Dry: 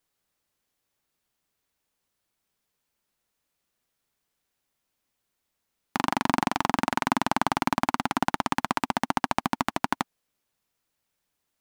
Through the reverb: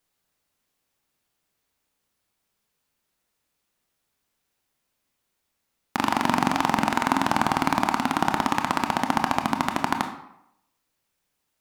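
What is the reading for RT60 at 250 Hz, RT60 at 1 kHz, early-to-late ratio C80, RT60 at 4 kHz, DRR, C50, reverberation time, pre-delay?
0.75 s, 0.80 s, 11.0 dB, 0.55 s, 5.0 dB, 8.5 dB, 0.80 s, 22 ms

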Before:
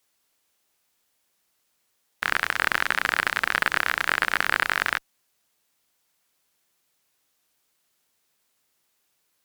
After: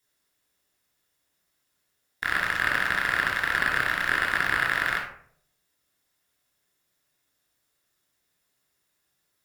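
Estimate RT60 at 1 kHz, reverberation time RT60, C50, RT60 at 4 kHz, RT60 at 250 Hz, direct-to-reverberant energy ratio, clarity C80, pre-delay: 0.55 s, 0.60 s, 4.5 dB, 0.30 s, 0.65 s, -1.5 dB, 8.5 dB, 3 ms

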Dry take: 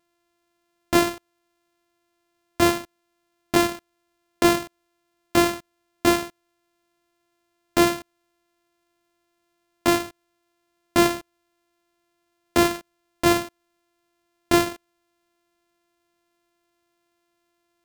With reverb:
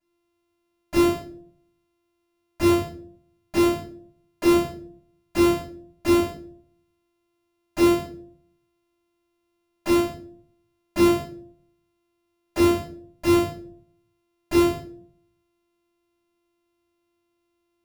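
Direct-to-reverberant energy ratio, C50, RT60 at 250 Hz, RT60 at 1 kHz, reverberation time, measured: -12.0 dB, 5.5 dB, 0.80 s, 0.45 s, 0.55 s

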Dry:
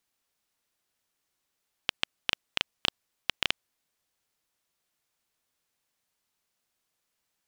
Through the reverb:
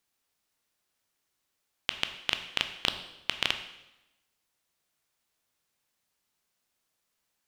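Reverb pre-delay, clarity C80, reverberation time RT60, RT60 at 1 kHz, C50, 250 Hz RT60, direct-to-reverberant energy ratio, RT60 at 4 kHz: 8 ms, 12.0 dB, 0.95 s, 1.0 s, 10.5 dB, 1.0 s, 7.5 dB, 0.90 s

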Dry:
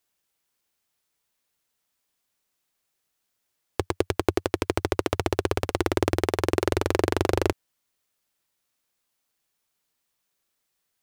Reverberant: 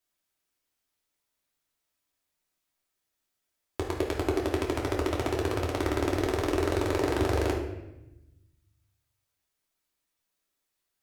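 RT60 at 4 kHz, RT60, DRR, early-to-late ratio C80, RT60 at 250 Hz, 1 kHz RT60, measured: 0.70 s, 0.90 s, -2.5 dB, 7.5 dB, 1.5 s, 0.85 s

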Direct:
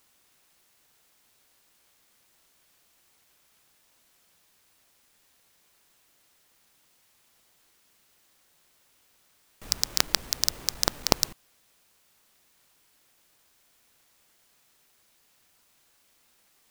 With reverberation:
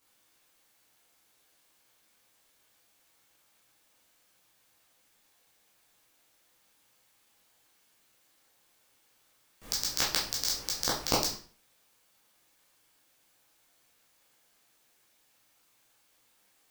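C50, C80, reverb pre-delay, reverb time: 5.5 dB, 10.5 dB, 12 ms, 0.45 s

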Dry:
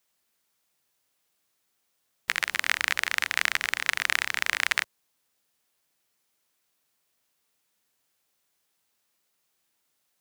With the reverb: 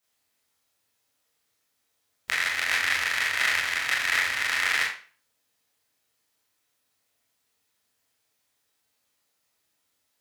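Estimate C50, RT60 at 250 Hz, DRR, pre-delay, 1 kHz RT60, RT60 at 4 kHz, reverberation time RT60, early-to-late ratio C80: 4.0 dB, 0.40 s, -6.5 dB, 22 ms, 0.40 s, 0.35 s, 0.40 s, 8.0 dB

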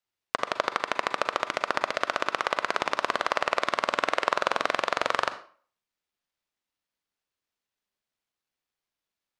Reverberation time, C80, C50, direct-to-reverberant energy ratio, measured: 0.45 s, 16.5 dB, 13.0 dB, 10.5 dB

